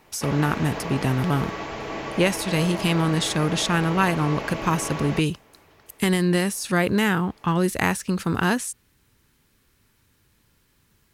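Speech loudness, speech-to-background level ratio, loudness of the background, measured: −23.5 LKFS, 8.5 dB, −32.0 LKFS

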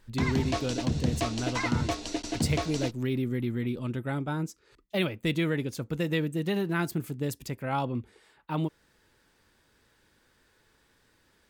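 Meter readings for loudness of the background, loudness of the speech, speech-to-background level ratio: −31.5 LKFS, −32.0 LKFS, −0.5 dB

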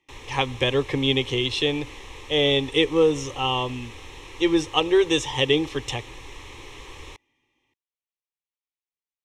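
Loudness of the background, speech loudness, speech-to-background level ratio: −42.0 LKFS, −23.0 LKFS, 19.0 dB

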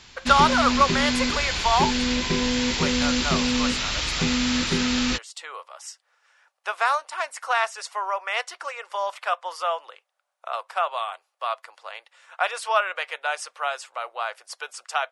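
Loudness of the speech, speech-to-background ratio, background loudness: −26.0 LKFS, −2.5 dB, −23.5 LKFS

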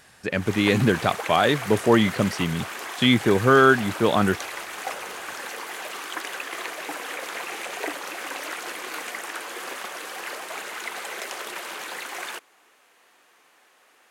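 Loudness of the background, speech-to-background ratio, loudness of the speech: −33.0 LKFS, 12.0 dB, −21.0 LKFS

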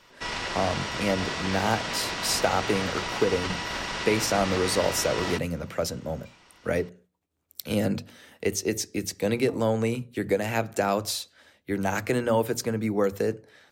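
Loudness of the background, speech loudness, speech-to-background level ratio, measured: −30.5 LKFS, −28.0 LKFS, 2.5 dB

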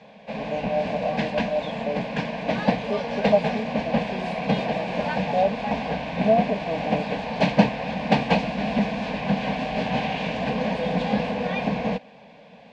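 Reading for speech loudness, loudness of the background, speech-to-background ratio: −28.5 LKFS, −26.0 LKFS, −2.5 dB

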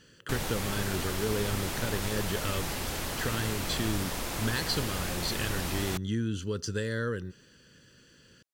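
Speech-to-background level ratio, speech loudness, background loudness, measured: 0.0 dB, −34.0 LKFS, −34.0 LKFS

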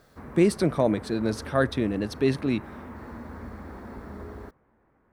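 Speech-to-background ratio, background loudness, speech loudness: 16.0 dB, −42.0 LKFS, −26.0 LKFS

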